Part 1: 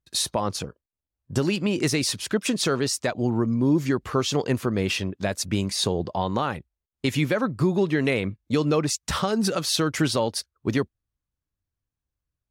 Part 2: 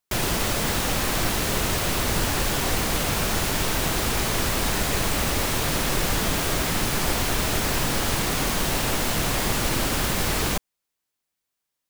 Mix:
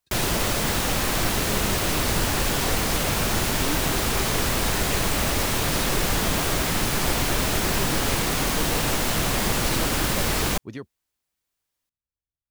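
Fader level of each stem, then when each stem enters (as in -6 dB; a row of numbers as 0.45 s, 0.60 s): -12.5 dB, +0.5 dB; 0.00 s, 0.00 s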